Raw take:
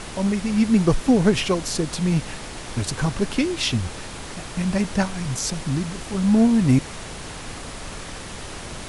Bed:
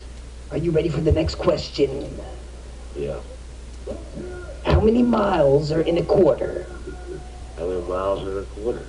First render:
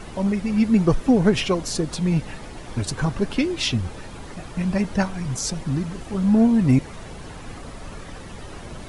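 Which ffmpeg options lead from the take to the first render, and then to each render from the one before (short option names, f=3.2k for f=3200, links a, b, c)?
-af "afftdn=nr=10:nf=-36"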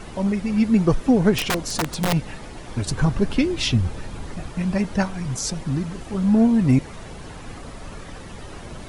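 -filter_complex "[0:a]asettb=1/sr,asplit=3[a][b][c];[a]atrim=end=1.384[d];[b]atrim=start=1.38:end=2.13,asetpts=PTS-STARTPTS,afade=t=in:d=0.004:c=qsin,afade=t=out:st=0.746:d=0.004:c=qsin,aeval=exprs='(mod(6.31*val(0)+1,2)-1)/6.31':c=same[e];[c]atrim=start=2.126[f];[d][e]acrossfade=d=0.004:c1=hsin:c2=qsin[g];[g][f]acrossfade=d=0.004:c1=qsin:c2=hsin,asettb=1/sr,asplit=3[h][i][j];[h]atrim=end=2.874[k];[i]atrim=start=2.87:end=4.5,asetpts=PTS-STARTPTS,afade=t=in:d=0.004:c=qsin,afade=t=out:st=1.626:d=0.004:c=qsin,lowshelf=f=170:g=7[l];[j]atrim=start=4.496[m];[k][l]acrossfade=d=0.004:c1=hsin:c2=qsin[n];[n][m]acrossfade=d=0.004:c1=qsin:c2=hsin"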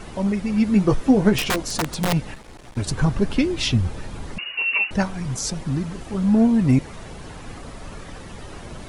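-filter_complex "[0:a]asettb=1/sr,asplit=3[a][b][c];[a]atrim=end=0.654[d];[b]atrim=start=0.65:end=1.63,asetpts=PTS-STARTPTS,afade=t=in:d=0.004:c=qsin,afade=t=out:st=0.976:d=0.004:c=qsin,asplit=2[e][f];[f]adelay=15,volume=-7dB[g];[e][g]amix=inputs=2:normalize=0,atrim=end_sample=43218[h];[c]atrim=start=1.626[i];[d][h]acrossfade=d=0.004:c1=hsin:c2=qsin[j];[j][i]acrossfade=d=0.004:c1=qsin:c2=hsin,asettb=1/sr,asplit=3[k][l][m];[k]atrim=end=2.344[n];[l]atrim=start=2.34:end=2.77,asetpts=PTS-STARTPTS,afade=t=in:d=0.004:c=qsin,afade=t=out:st=0.426:d=0.004:c=qsin,aeval=exprs='(tanh(89.1*val(0)+0.7)-tanh(0.7))/89.1':c=same[o];[m]atrim=start=2.766[p];[n][o]acrossfade=d=0.004:c1=hsin:c2=qsin[q];[q][p]acrossfade=d=0.004:c1=qsin:c2=hsin,asettb=1/sr,asplit=3[r][s][t];[r]atrim=end=4.384[u];[s]atrim=start=4.38:end=4.91,asetpts=PTS-STARTPTS,afade=t=in:d=0.004:c=qsin,afade=t=out:st=0.526:d=0.004:c=qsin,lowpass=f=2.5k:t=q:w=0.5098,lowpass=f=2.5k:t=q:w=0.6013,lowpass=f=2.5k:t=q:w=0.9,lowpass=f=2.5k:t=q:w=2.563,afreqshift=-2900[v];[t]atrim=start=4.906[w];[u][v]acrossfade=d=0.004:c1=hsin:c2=qsin[x];[x][w]acrossfade=d=0.004:c1=qsin:c2=hsin"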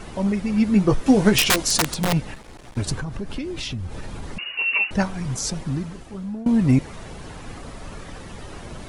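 -filter_complex "[0:a]asettb=1/sr,asplit=3[a][b][c];[a]atrim=end=1.064[d];[b]atrim=start=1.06:end=1.94,asetpts=PTS-STARTPTS,afade=t=in:d=0.004:c=qsin,afade=t=out:st=0.876:d=0.004:c=qsin,highshelf=f=2k:g=9[e];[c]atrim=start=1.936[f];[d][e]acrossfade=d=0.004:c1=hsin:c2=qsin[g];[g][f]acrossfade=d=0.004:c1=qsin:c2=hsin,asettb=1/sr,asplit=3[h][i][j];[h]atrim=end=2.964[k];[i]atrim=start=2.96:end=4.59,asetpts=PTS-STARTPTS,afade=t=in:d=0.004:c=qsin,afade=t=out:st=1.626:d=0.004:c=qsin,acompressor=threshold=-26dB:ratio=6:attack=3.2:release=140:knee=1:detection=peak[l];[j]atrim=start=4.586[m];[k][l]acrossfade=d=0.004:c1=hsin:c2=qsin[n];[n][m]acrossfade=d=0.004:c1=qsin:c2=hsin,asplit=2[o][p];[o]atrim=end=6.46,asetpts=PTS-STARTPTS,afade=t=out:st=5.56:d=0.9:silence=0.0749894[q];[p]atrim=start=6.46,asetpts=PTS-STARTPTS,afade=t=in:d=0.004:c=hsin:silence=0.0749894[r];[q][r]concat=n=2:v=0:a=1"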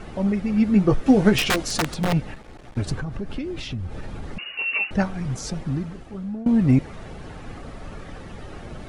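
-af "highshelf=f=4.4k:g=-11.5,bandreject=f=990:w=11"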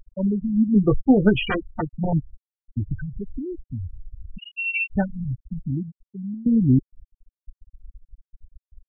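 -af "lowpass=f=5.5k:w=0.5412,lowpass=f=5.5k:w=1.3066,afftfilt=real='re*gte(hypot(re,im),0.2)':imag='im*gte(hypot(re,im),0.2)':win_size=1024:overlap=0.75"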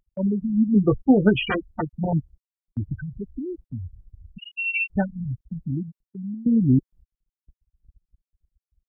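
-af "highpass=f=86:p=1,agate=range=-12dB:threshold=-47dB:ratio=16:detection=peak"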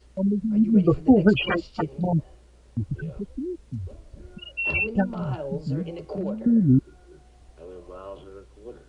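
-filter_complex "[1:a]volume=-16.5dB[a];[0:a][a]amix=inputs=2:normalize=0"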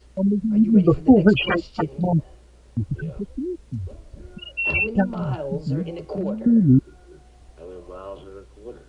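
-af "volume=3dB,alimiter=limit=-3dB:level=0:latency=1"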